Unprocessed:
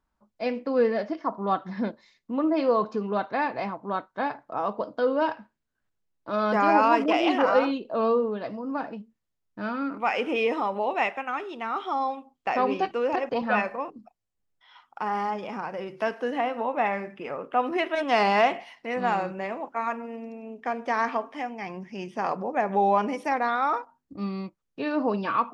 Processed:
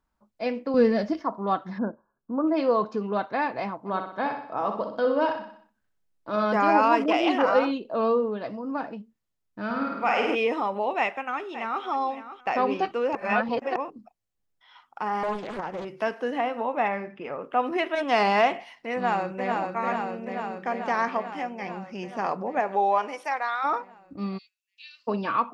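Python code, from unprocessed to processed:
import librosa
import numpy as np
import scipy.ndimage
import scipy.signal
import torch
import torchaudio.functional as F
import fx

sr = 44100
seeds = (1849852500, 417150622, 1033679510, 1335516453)

y = fx.bass_treble(x, sr, bass_db=13, treble_db=10, at=(0.74, 1.23))
y = fx.brickwall_lowpass(y, sr, high_hz=1700.0, at=(1.77, 2.46), fade=0.02)
y = fx.echo_feedback(y, sr, ms=62, feedback_pct=50, wet_db=-7, at=(3.85, 6.44), fade=0.02)
y = fx.room_flutter(y, sr, wall_m=8.9, rt60_s=0.99, at=(9.65, 10.35))
y = fx.echo_throw(y, sr, start_s=10.98, length_s=0.86, ms=560, feedback_pct=25, wet_db=-12.5)
y = fx.doppler_dist(y, sr, depth_ms=0.72, at=(15.23, 15.85))
y = fx.air_absorb(y, sr, metres=92.0, at=(16.88, 17.42))
y = fx.echo_throw(y, sr, start_s=18.94, length_s=0.6, ms=440, feedback_pct=75, wet_db=-3.5)
y = fx.highpass(y, sr, hz=fx.line((22.59, 280.0), (23.63, 1100.0)), slope=12, at=(22.59, 23.63), fade=0.02)
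y = fx.cheby2_highpass(y, sr, hz=870.0, order=4, stop_db=60, at=(24.37, 25.07), fade=0.02)
y = fx.edit(y, sr, fx.reverse_span(start_s=13.15, length_s=0.61), tone=tone)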